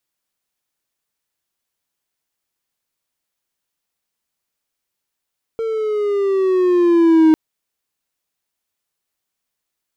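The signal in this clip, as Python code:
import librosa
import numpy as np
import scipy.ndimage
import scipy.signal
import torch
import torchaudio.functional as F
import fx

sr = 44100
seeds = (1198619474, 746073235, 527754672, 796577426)

y = fx.riser_tone(sr, length_s=1.75, level_db=-5, wave='triangle', hz=455.0, rise_st=-6.5, swell_db=12)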